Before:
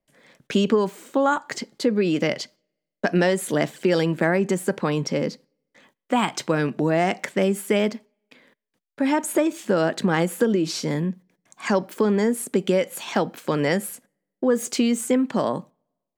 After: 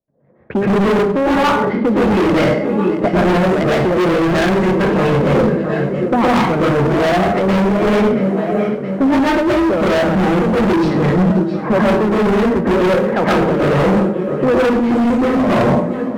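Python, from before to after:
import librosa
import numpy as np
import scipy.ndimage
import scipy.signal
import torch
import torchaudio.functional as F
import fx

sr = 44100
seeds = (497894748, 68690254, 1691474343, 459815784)

y = fx.filter_lfo_lowpass(x, sr, shape='sine', hz=4.5, low_hz=630.0, high_hz=2200.0, q=1.2)
y = fx.leveller(y, sr, passes=2)
y = scipy.signal.sosfilt(scipy.signal.butter(2, 45.0, 'highpass', fs=sr, output='sos'), y)
y = fx.peak_eq(y, sr, hz=78.0, db=9.5, octaves=0.7)
y = fx.env_lowpass(y, sr, base_hz=790.0, full_db=-11.0)
y = fx.low_shelf(y, sr, hz=350.0, db=5.0)
y = fx.hum_notches(y, sr, base_hz=50, count=6)
y = fx.echo_feedback(y, sr, ms=673, feedback_pct=57, wet_db=-16.5)
y = fx.rev_plate(y, sr, seeds[0], rt60_s=0.58, hf_ratio=0.9, predelay_ms=105, drr_db=-9.5)
y = np.clip(y, -10.0 ** (-9.0 / 20.0), 10.0 ** (-9.0 / 20.0))
y = fx.rider(y, sr, range_db=5, speed_s=0.5)
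y = y * 10.0 ** (-2.0 / 20.0)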